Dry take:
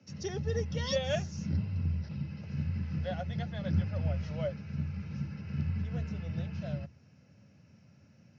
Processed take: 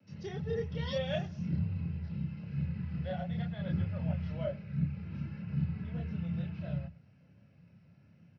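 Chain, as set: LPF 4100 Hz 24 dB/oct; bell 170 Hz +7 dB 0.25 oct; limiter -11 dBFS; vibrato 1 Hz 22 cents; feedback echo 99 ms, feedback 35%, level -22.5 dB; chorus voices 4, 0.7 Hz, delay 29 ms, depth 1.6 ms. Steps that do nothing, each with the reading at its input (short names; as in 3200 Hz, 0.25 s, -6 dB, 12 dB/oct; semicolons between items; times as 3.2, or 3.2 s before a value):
limiter -11 dBFS: input peak -16.5 dBFS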